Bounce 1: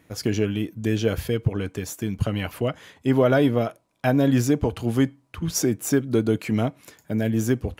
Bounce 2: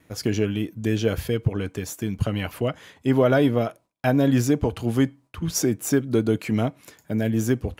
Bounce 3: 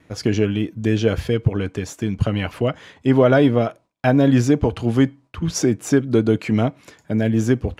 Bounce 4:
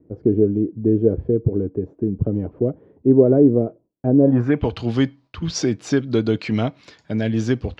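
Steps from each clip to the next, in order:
noise gate with hold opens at −50 dBFS
high-frequency loss of the air 62 metres; level +4.5 dB
low-pass filter sweep 390 Hz → 4,500 Hz, 0:04.19–0:04.70; level −2.5 dB

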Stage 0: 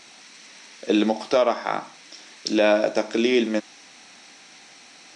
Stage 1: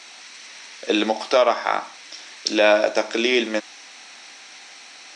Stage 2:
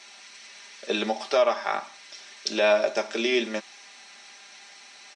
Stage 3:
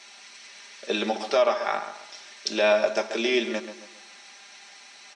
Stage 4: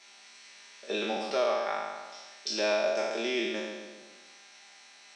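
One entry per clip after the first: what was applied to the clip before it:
meter weighting curve A; level +4.5 dB
comb filter 5 ms; level −7 dB
tape delay 135 ms, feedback 40%, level −9 dB
peak hold with a decay on every bin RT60 1.42 s; level −9 dB

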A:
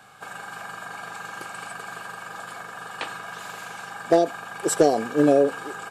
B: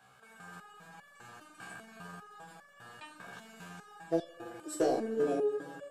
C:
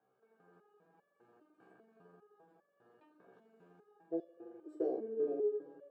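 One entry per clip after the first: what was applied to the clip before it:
delay with a low-pass on its return 85 ms, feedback 74%, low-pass 490 Hz, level −3 dB; step-sequenced resonator 5 Hz 64–570 Hz; level −4 dB
resonant band-pass 390 Hz, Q 3.1; level −2 dB

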